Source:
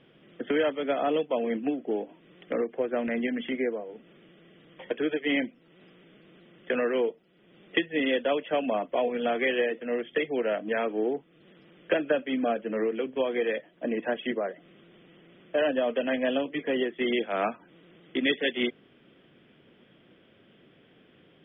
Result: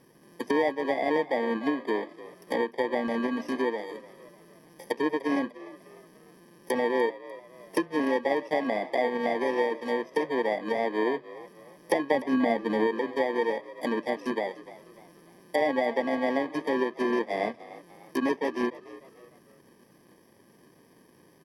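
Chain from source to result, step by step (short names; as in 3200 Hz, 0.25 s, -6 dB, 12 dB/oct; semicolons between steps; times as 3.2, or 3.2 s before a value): FFT order left unsorted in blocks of 32 samples; tone controls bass -4 dB, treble -8 dB; treble ducked by the level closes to 2400 Hz, closed at -27 dBFS; 12.15–12.87 low shelf 220 Hz +9 dB; frequency-shifting echo 0.298 s, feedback 40%, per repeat +60 Hz, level -17.5 dB; gain +3 dB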